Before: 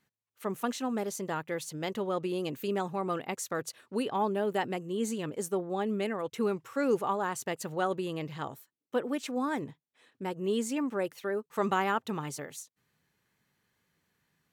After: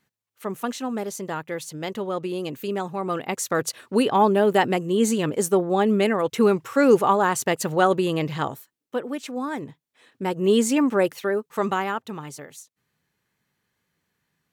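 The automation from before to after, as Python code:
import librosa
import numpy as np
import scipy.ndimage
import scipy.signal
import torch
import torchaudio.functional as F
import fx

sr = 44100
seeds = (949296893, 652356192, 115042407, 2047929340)

y = fx.gain(x, sr, db=fx.line((2.94, 4.0), (3.67, 11.5), (8.4, 11.5), (9.0, 2.5), (9.55, 2.5), (10.51, 11.5), (11.05, 11.5), (12.05, 0.5)))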